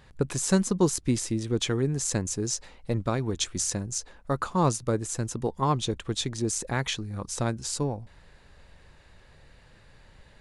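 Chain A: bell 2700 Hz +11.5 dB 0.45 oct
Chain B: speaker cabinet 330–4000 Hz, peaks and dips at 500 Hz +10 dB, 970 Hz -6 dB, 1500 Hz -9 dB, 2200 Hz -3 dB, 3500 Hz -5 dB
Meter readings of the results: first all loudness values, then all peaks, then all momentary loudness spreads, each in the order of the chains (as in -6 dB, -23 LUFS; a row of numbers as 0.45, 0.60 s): -27.5, -31.0 LUFS; -8.0, -12.5 dBFS; 7, 11 LU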